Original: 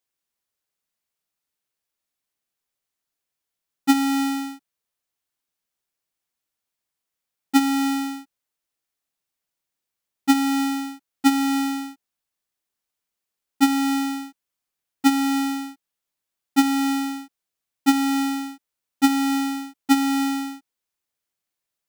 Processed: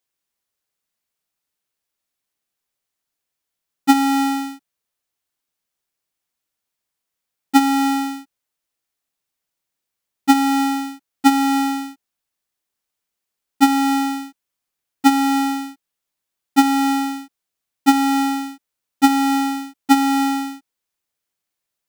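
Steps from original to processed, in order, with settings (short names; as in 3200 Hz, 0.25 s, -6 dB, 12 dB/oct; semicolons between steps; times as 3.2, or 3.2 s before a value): dynamic EQ 840 Hz, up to +6 dB, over -34 dBFS, Q 1.1; gain +2.5 dB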